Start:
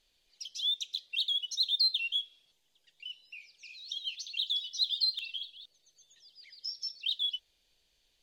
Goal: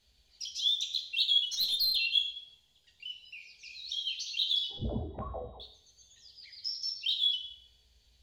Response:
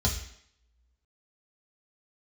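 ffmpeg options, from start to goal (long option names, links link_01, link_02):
-filter_complex "[0:a]asettb=1/sr,asplit=3[link_01][link_02][link_03];[link_01]atrim=end=4.704[link_04];[link_02]atrim=start=4.7:end=5.6,asetpts=PTS-STARTPTS,afade=type=in:duration=0.004:curve=qsin,afade=type=out:start_time=0.896:duration=0.004:curve=qsin,lowpass=frequency=3200:width_type=q:width=0.5098,lowpass=frequency=3200:width_type=q:width=0.6013,lowpass=frequency=3200:width_type=q:width=0.9,lowpass=frequency=3200:width_type=q:width=2.563,afreqshift=-3800[link_05];[link_03]atrim=start=5.596[link_06];[link_04][link_05]acrossfade=duration=0.004:curve1=hsin:curve2=qsin[link_07];[link_07][link_06]acrossfade=duration=0.004:curve1=qsin:curve2=hsin,asplit=2[link_08][link_09];[1:a]atrim=start_sample=2205,adelay=14[link_10];[link_09][link_10]afir=irnorm=-1:irlink=0,volume=-9.5dB[link_11];[link_08][link_11]amix=inputs=2:normalize=0,asettb=1/sr,asplit=3[link_12][link_13][link_14];[link_12]atrim=end=1.464[link_15];[link_13]atrim=start=1.46:end=1.96,asetpts=PTS-STARTPTS,afade=type=in:duration=0.004:curve=qsin,afade=type=out:start_time=0.496:duration=0.004:curve=qsin,aeval=exprs='(tanh(17.8*val(0)+0.1)-tanh(0.1))/17.8':channel_layout=same[link_16];[link_14]atrim=start=1.956[link_17];[link_15][link_16]acrossfade=duration=0.004:curve1=hsin:curve2=qsin[link_18];[link_18][link_17]acrossfade=duration=0.004:curve1=qsin:curve2=hsin"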